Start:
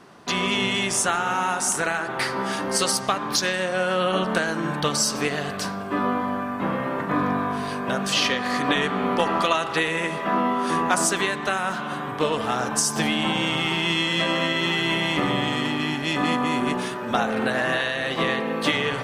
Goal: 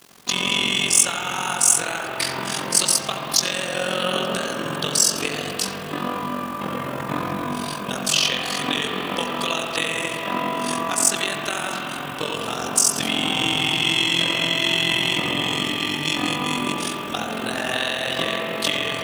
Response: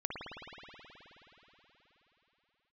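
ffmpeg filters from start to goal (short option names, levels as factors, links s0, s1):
-filter_complex "[0:a]alimiter=limit=0.266:level=0:latency=1:release=420,aexciter=amount=2.6:drive=7.4:freq=2600,acrusher=bits=6:mix=0:aa=0.000001,tremolo=f=44:d=0.919,asplit=2[s0][s1];[1:a]atrim=start_sample=2205,lowpass=3000,adelay=83[s2];[s1][s2]afir=irnorm=-1:irlink=0,volume=0.562[s3];[s0][s3]amix=inputs=2:normalize=0"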